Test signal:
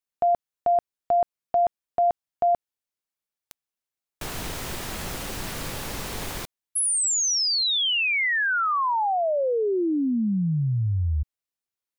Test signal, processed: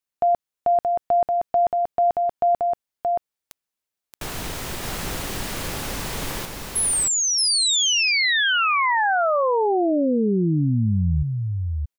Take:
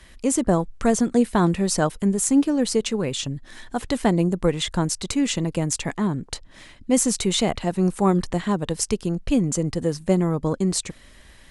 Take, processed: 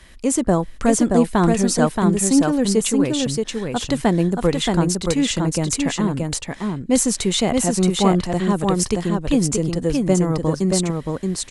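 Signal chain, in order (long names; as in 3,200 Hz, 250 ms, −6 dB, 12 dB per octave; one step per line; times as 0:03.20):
single-tap delay 626 ms −3.5 dB
level +2 dB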